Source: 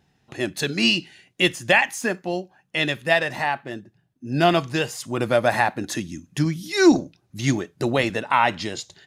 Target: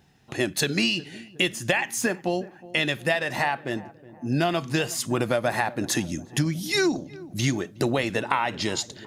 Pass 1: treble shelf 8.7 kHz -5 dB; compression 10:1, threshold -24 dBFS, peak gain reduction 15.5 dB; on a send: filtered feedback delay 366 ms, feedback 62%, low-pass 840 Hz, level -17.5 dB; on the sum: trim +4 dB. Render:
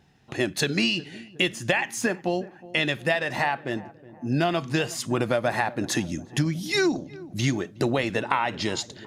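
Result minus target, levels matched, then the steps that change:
8 kHz band -3.0 dB
change: treble shelf 8.7 kHz +4.5 dB

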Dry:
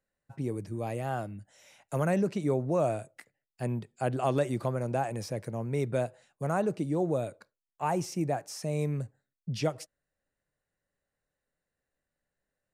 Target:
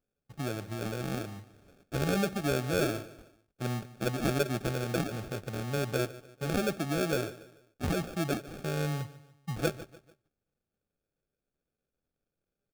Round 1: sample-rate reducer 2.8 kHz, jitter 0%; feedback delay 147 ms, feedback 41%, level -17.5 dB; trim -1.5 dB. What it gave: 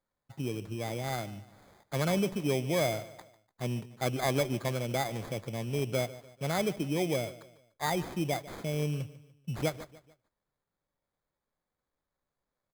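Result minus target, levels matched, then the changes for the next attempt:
sample-rate reducer: distortion -13 dB
change: sample-rate reducer 990 Hz, jitter 0%

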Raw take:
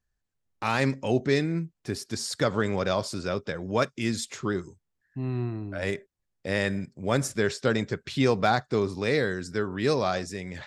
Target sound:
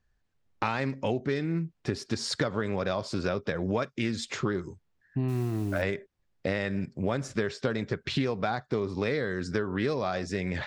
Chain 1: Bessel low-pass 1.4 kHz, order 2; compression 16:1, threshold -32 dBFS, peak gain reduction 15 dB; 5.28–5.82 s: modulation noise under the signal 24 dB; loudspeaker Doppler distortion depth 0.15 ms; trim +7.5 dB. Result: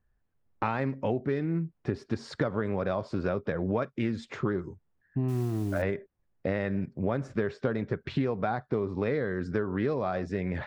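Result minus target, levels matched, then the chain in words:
4 kHz band -11.0 dB
Bessel low-pass 4.1 kHz, order 2; compression 16:1, threshold -32 dBFS, peak gain reduction 15 dB; 5.28–5.82 s: modulation noise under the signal 24 dB; loudspeaker Doppler distortion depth 0.15 ms; trim +7.5 dB

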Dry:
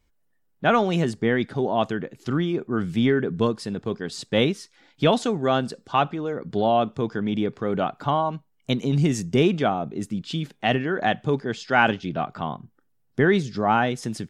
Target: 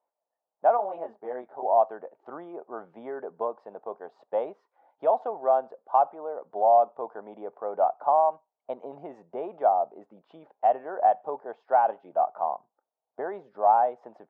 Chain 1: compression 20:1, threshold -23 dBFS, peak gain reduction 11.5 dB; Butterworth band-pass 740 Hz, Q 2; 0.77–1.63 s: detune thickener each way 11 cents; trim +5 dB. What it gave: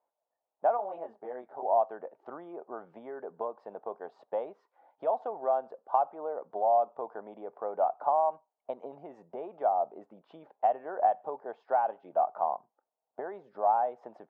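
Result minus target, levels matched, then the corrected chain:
compression: peak gain reduction +6 dB
compression 20:1, threshold -16.5 dBFS, peak gain reduction 5.5 dB; Butterworth band-pass 740 Hz, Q 2; 0.77–1.63 s: detune thickener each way 11 cents; trim +5 dB

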